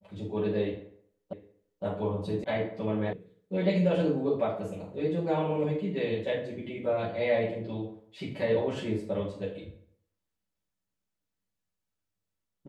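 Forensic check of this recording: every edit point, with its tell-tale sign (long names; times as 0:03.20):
0:01.33: the same again, the last 0.51 s
0:02.44: cut off before it has died away
0:03.13: cut off before it has died away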